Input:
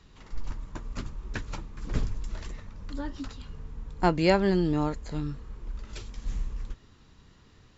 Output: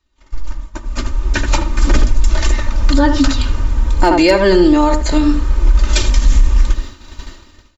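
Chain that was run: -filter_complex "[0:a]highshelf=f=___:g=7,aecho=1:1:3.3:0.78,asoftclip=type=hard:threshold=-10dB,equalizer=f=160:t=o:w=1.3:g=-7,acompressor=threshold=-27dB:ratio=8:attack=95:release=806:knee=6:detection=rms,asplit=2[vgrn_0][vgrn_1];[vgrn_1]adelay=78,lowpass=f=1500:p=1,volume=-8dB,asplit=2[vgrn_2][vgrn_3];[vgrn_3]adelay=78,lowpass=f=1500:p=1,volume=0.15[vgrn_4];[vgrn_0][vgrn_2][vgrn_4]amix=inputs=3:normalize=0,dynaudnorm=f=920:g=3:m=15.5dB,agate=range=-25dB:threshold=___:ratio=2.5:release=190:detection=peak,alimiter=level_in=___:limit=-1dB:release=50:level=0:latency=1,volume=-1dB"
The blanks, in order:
6500, -31dB, 11.5dB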